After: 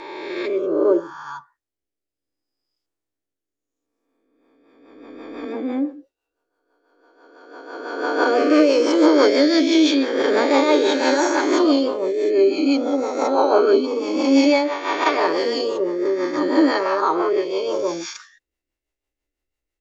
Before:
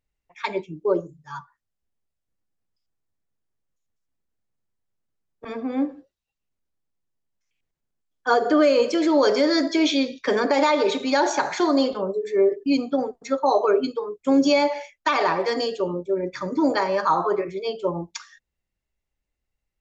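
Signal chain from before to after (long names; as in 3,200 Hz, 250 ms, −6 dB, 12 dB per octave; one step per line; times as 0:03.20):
peak hold with a rise ahead of every peak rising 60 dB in 1.78 s
low shelf with overshoot 240 Hz −6.5 dB, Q 3
rotating-speaker cabinet horn 0.65 Hz, later 6 Hz, at 0:03.92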